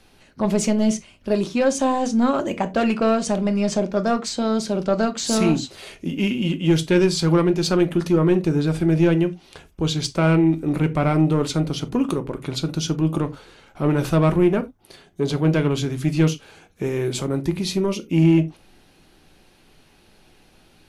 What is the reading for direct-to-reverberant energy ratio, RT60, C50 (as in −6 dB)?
8.5 dB, non-exponential decay, 19.5 dB